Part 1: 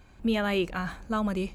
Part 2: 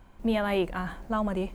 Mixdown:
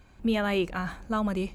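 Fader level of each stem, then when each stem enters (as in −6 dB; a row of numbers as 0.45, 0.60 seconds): −1.0, −15.5 decibels; 0.00, 0.00 seconds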